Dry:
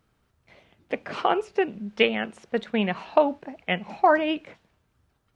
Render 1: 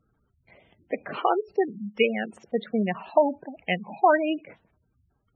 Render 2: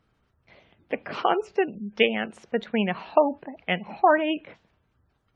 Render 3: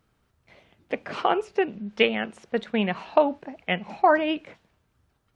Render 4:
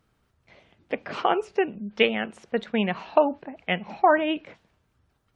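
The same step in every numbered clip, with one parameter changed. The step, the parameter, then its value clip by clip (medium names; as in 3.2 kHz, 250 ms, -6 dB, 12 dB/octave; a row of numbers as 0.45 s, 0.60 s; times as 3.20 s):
spectral gate, under each frame's peak: -15 dB, -30 dB, -60 dB, -40 dB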